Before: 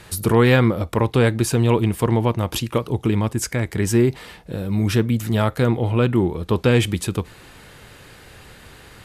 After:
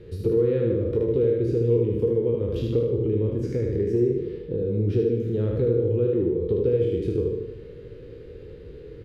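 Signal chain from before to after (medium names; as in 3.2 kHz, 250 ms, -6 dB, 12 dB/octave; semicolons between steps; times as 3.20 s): spectral sustain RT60 0.70 s; FFT filter 110 Hz 0 dB, 230 Hz -5 dB, 470 Hz +11 dB, 700 Hz -23 dB, 11 kHz -4 dB; compression 2.5:1, threshold -25 dBFS, peak gain reduction 13.5 dB; distance through air 300 m; feedback delay 76 ms, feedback 45%, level -4.5 dB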